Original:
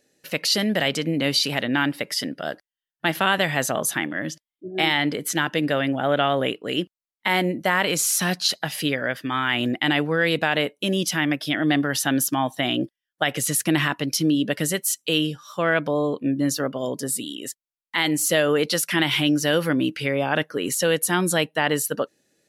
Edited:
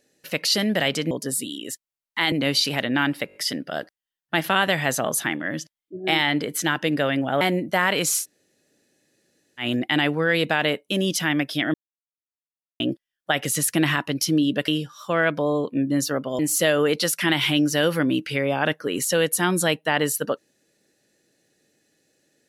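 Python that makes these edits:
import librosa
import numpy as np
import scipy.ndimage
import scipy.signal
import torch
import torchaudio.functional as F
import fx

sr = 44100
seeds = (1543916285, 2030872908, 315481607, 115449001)

y = fx.edit(x, sr, fx.stutter(start_s=2.06, slice_s=0.02, count=5),
    fx.cut(start_s=6.12, length_s=1.21),
    fx.room_tone_fill(start_s=8.13, length_s=1.41, crossfade_s=0.1),
    fx.silence(start_s=11.66, length_s=1.06),
    fx.cut(start_s=14.6, length_s=0.57),
    fx.move(start_s=16.88, length_s=1.21, to_s=1.11), tone=tone)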